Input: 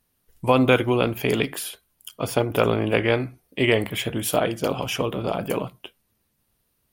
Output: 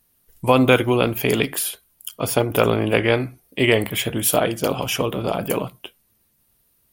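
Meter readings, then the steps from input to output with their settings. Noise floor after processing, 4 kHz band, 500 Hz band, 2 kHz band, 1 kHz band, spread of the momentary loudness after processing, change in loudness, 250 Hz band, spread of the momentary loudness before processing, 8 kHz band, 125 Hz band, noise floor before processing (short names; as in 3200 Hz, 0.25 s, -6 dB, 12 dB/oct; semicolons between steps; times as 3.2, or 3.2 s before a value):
-64 dBFS, +3.5 dB, +2.5 dB, +3.0 dB, +2.5 dB, 10 LU, +3.0 dB, +2.5 dB, 12 LU, +7.5 dB, +2.5 dB, -72 dBFS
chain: high shelf 7800 Hz +8.5 dB; gain +2.5 dB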